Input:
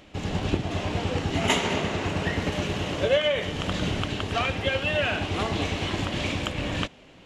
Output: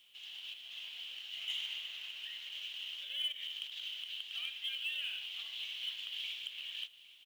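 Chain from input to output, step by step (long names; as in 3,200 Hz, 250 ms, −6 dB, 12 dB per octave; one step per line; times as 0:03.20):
brickwall limiter −17 dBFS, peak gain reduction 7.5 dB
0:03.32–0:03.82: compressor whose output falls as the input rises −30 dBFS, ratio −0.5
four-pole ladder band-pass 3,300 Hz, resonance 75%
soft clipping −23.5 dBFS, distortion −24 dB
log-companded quantiser 6 bits
single-tap delay 809 ms −18.5 dB
level −3.5 dB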